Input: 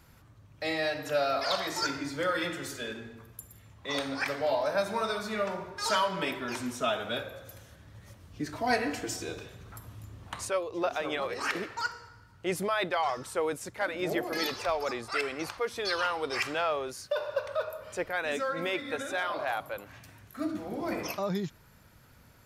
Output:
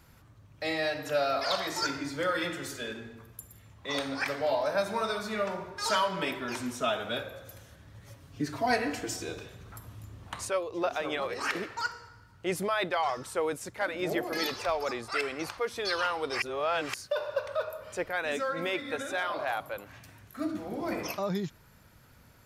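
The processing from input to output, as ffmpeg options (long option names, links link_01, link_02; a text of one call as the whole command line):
ffmpeg -i in.wav -filter_complex "[0:a]asettb=1/sr,asplit=3[link_01][link_02][link_03];[link_01]atrim=end=8.044[link_04];[link_02]atrim=start=8.04:end=8.66,asetpts=PTS-STARTPTS,afade=type=in:duration=0.004:curve=qsin,afade=type=out:start_time=0.616:duration=0.004:curve=qsin,aecho=1:1:7.3:0.65,atrim=end_sample=27342[link_05];[link_03]atrim=start=8.656[link_06];[link_04][link_05]acrossfade=duration=0.004:curve1=hsin:curve2=qsin[link_07];[link_07][link_06]acrossfade=duration=0.004:curve1=qsin:curve2=hsin,asplit=3[link_08][link_09][link_10];[link_08]atrim=end=16.422[link_11];[link_09]atrim=start=16.418:end=16.942,asetpts=PTS-STARTPTS,areverse[link_12];[link_10]atrim=start=16.938[link_13];[link_11][link_12]acrossfade=duration=0.004:curve1=hsin:curve2=hsin[link_14];[link_14][link_13]acrossfade=duration=0.004:curve1=hsin:curve2=hsin" out.wav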